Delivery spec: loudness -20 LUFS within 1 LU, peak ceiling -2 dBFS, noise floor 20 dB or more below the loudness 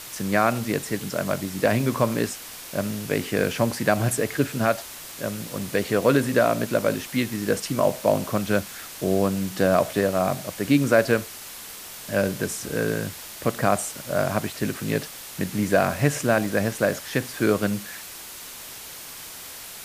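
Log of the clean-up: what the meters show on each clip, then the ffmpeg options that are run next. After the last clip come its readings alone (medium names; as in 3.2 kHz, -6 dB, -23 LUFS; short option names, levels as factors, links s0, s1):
noise floor -40 dBFS; noise floor target -44 dBFS; loudness -24.0 LUFS; peak level -4.5 dBFS; loudness target -20.0 LUFS
-> -af "afftdn=nr=6:nf=-40"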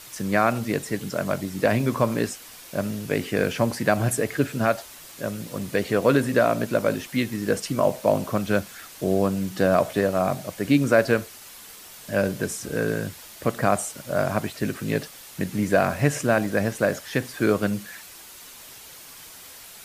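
noise floor -44 dBFS; noise floor target -45 dBFS
-> -af "afftdn=nr=6:nf=-44"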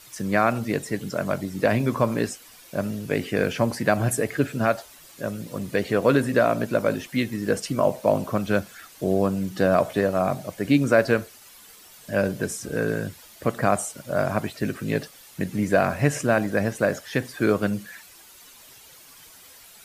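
noise floor -49 dBFS; loudness -24.5 LUFS; peak level -4.5 dBFS; loudness target -20.0 LUFS
-> -af "volume=1.68,alimiter=limit=0.794:level=0:latency=1"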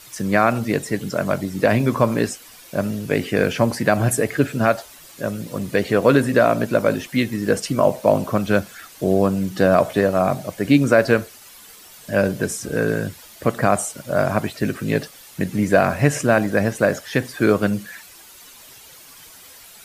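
loudness -20.0 LUFS; peak level -2.0 dBFS; noise floor -44 dBFS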